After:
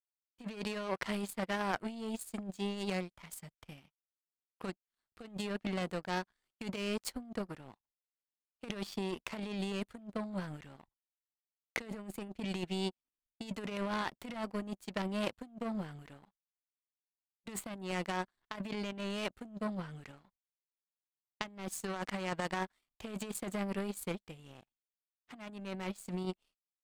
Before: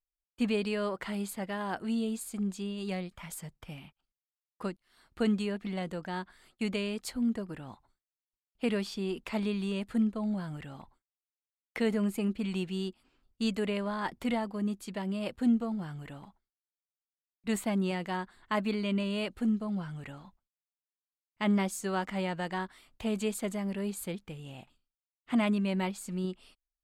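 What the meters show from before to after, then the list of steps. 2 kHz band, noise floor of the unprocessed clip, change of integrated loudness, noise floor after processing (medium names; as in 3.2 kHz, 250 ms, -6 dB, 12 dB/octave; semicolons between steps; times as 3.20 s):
-2.5 dB, under -85 dBFS, -6.5 dB, under -85 dBFS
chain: compressor with a negative ratio -34 dBFS, ratio -1; power-law waveshaper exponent 2; trim +5.5 dB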